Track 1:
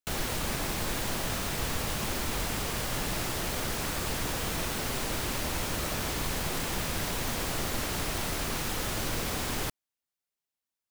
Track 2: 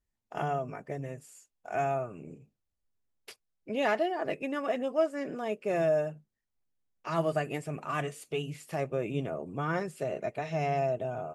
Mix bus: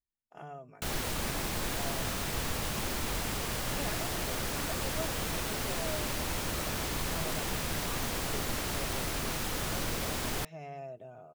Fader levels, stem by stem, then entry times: −2.0, −14.0 decibels; 0.75, 0.00 seconds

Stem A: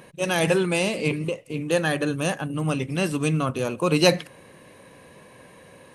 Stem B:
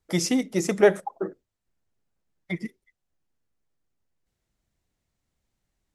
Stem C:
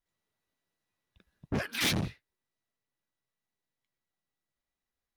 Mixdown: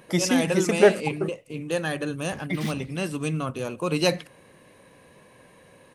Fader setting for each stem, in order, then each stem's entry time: −4.5, +1.0, −10.5 decibels; 0.00, 0.00, 0.80 seconds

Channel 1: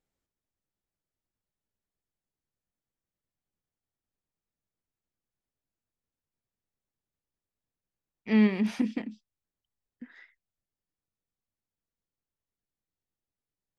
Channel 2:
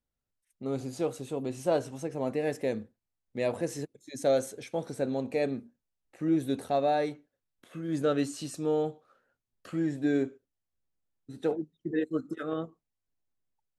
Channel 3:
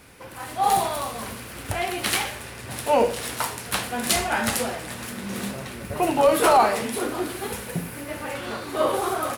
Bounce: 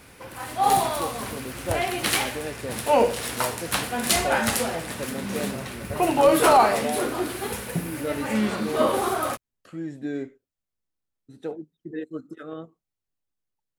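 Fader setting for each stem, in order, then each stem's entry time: −3.0, −3.5, +0.5 decibels; 0.00, 0.00, 0.00 seconds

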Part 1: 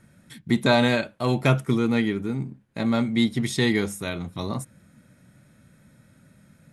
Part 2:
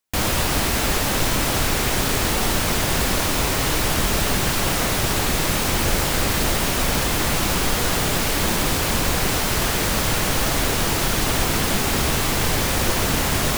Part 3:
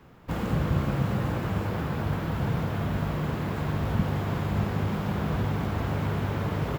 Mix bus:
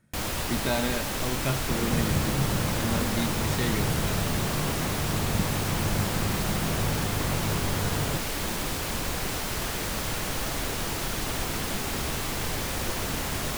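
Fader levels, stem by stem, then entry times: −9.5, −9.5, −2.0 decibels; 0.00, 0.00, 1.40 seconds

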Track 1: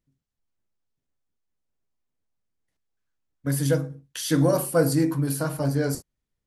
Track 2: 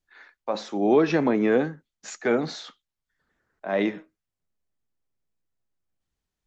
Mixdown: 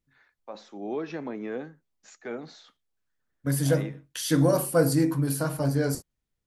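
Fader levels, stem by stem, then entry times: −1.0, −13.0 decibels; 0.00, 0.00 seconds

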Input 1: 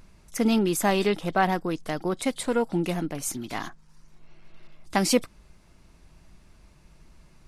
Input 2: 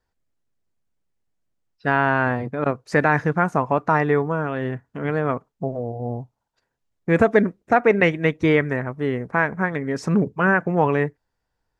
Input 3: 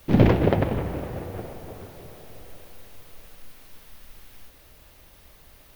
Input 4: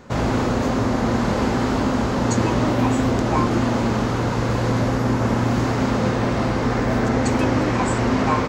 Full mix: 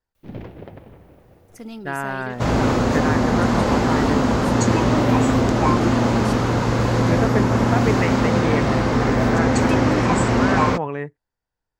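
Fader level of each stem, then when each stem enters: −13.5, −7.5, −18.0, +2.0 decibels; 1.20, 0.00, 0.15, 2.30 seconds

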